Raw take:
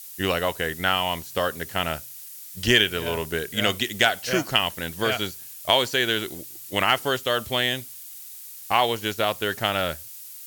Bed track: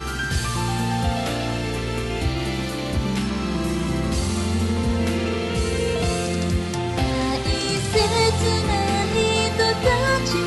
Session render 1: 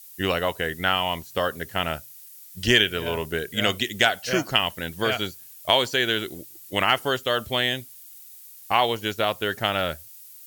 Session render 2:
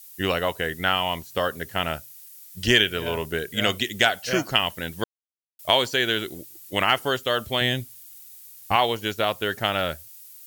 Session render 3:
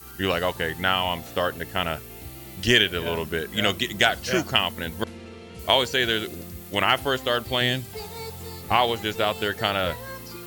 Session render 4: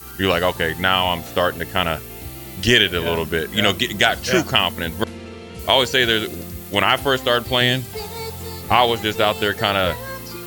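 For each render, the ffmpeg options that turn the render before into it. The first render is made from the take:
-af "afftdn=nr=7:nf=-41"
-filter_complex "[0:a]asettb=1/sr,asplit=3[s0][s1][s2];[s0]atrim=end=7.614[s3];[s1]atrim=start=7.61:end=8.76,asetpts=PTS-STARTPTS,afade=t=in:d=0.004:c=qsin,afade=t=out:st=1.146:d=0.004:c=qsin,lowshelf=f=190:g=11.5[s4];[s2]atrim=start=8.756[s5];[s3][s4]acrossfade=d=0.004:c1=hsin:c2=qsin[s6];[s6][s5]acrossfade=d=0.004:c1=qsin:c2=hsin,asplit=3[s7][s8][s9];[s7]atrim=end=5.04,asetpts=PTS-STARTPTS,afade=t=out:st=5.036:d=0.004:c=hsin[s10];[s8]atrim=start=5.04:end=5.59,asetpts=PTS-STARTPTS,volume=0[s11];[s9]atrim=start=5.59,asetpts=PTS-STARTPTS,afade=t=in:d=0.004:c=hsin[s12];[s10][s11][s12]concat=n=3:v=0:a=1"
-filter_complex "[1:a]volume=0.126[s0];[0:a][s0]amix=inputs=2:normalize=0"
-af "volume=2,alimiter=limit=0.794:level=0:latency=1"

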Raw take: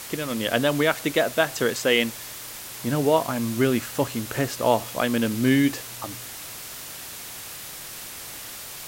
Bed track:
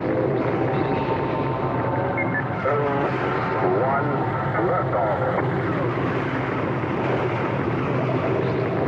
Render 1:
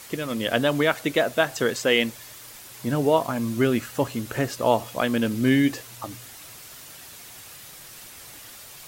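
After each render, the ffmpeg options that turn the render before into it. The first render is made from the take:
-af "afftdn=nr=7:nf=-38"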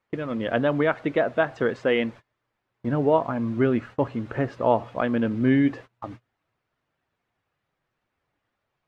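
-af "lowpass=1700,agate=range=0.0447:threshold=0.0112:ratio=16:detection=peak"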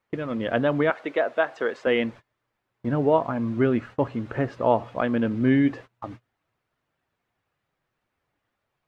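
-filter_complex "[0:a]asettb=1/sr,asplit=3[s0][s1][s2];[s0]atrim=end=0.904[s3];[s1]atrim=start=0.9:end=1.87,asetpts=PTS-STARTPTS,afade=t=in:d=0.004:c=qsin,afade=t=out:st=0.966:d=0.004:c=qsin,highpass=400[s4];[s2]atrim=start=1.866[s5];[s3][s4]acrossfade=d=0.004:c1=hsin:c2=qsin[s6];[s6][s5]acrossfade=d=0.004:c1=qsin:c2=hsin"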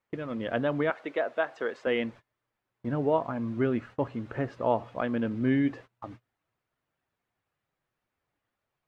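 -af "volume=0.531"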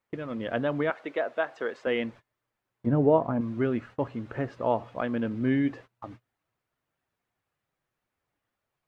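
-filter_complex "[0:a]asettb=1/sr,asplit=3[s0][s1][s2];[s0]atrim=end=2.864[s3];[s1]atrim=start=2.86:end=3.41,asetpts=PTS-STARTPTS,afade=t=in:d=0.004:c=qsin,afade=t=out:st=0.546:d=0.004:c=qsin,tiltshelf=f=1200:g=7[s4];[s2]atrim=start=3.406[s5];[s3][s4]acrossfade=d=0.004:c1=hsin:c2=qsin[s6];[s6][s5]acrossfade=d=0.004:c1=qsin:c2=hsin"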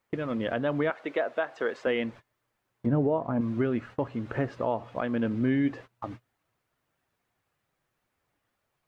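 -filter_complex "[0:a]asplit=2[s0][s1];[s1]acompressor=threshold=0.02:ratio=6,volume=0.75[s2];[s0][s2]amix=inputs=2:normalize=0,alimiter=limit=0.15:level=0:latency=1:release=300"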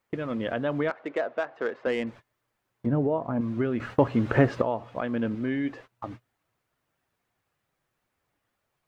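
-filter_complex "[0:a]asettb=1/sr,asplit=3[s0][s1][s2];[s0]atrim=end=0.884[s3];[s1]atrim=start=0.88:end=2.07,asetpts=PTS-STARTPTS,afade=t=in:d=0.004:c=qsin,afade=t=out:st=1.186:d=0.004:c=qsin,adynamicsmooth=sensitivity=2.5:basefreq=2200[s4];[s2]atrim=start=2.066[s5];[s3][s4]acrossfade=d=0.004:c1=hsin:c2=qsin[s6];[s6][s5]acrossfade=d=0.004:c1=qsin:c2=hsin,asettb=1/sr,asplit=3[s7][s8][s9];[s7]atrim=end=5.354[s10];[s8]atrim=start=5.35:end=5.92,asetpts=PTS-STARTPTS,afade=t=in:d=0.004:c=qsin,afade=t=out:st=0.566:d=0.004:c=qsin,equalizer=f=110:t=o:w=2.6:g=-6.5[s11];[s9]atrim=start=5.916[s12];[s10][s11]acrossfade=d=0.004:c1=hsin:c2=qsin[s13];[s13][s12]acrossfade=d=0.004:c1=qsin:c2=hsin,asplit=3[s14][s15][s16];[s14]atrim=end=3.802[s17];[s15]atrim=start=3.798:end=4.622,asetpts=PTS-STARTPTS,volume=2.82[s18];[s16]atrim=start=4.618[s19];[s17][s18]acrossfade=d=0.004:c1=hsin:c2=hsin[s20];[s20][s19]acrossfade=d=0.004:c1=hsin:c2=hsin"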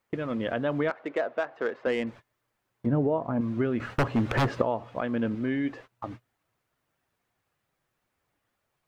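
-filter_complex "[0:a]asettb=1/sr,asplit=3[s0][s1][s2];[s0]atrim=end=3.804[s3];[s1]atrim=start=3.8:end=4.47,asetpts=PTS-STARTPTS,afade=t=in:d=0.004:c=qsin,afade=t=out:st=0.666:d=0.004:c=qsin,aeval=exprs='0.133*(abs(mod(val(0)/0.133+3,4)-2)-1)':c=same[s4];[s2]atrim=start=4.466[s5];[s3][s4]acrossfade=d=0.004:c1=hsin:c2=qsin[s6];[s6][s5]acrossfade=d=0.004:c1=qsin:c2=hsin"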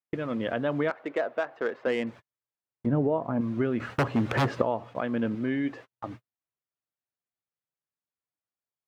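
-af "highpass=81,agate=range=0.0708:threshold=0.00562:ratio=16:detection=peak"

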